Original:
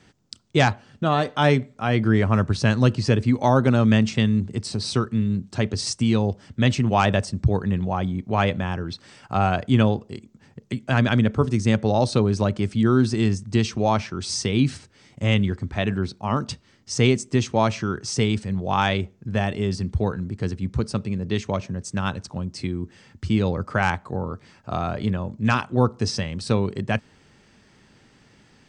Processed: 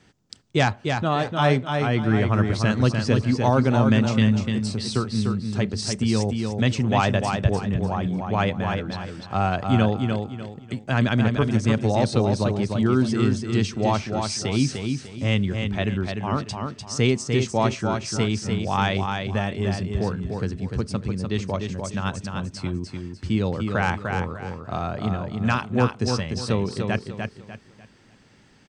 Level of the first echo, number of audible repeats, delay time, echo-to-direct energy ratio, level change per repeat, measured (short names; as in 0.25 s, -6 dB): -5.0 dB, 3, 0.298 s, -4.5 dB, -10.0 dB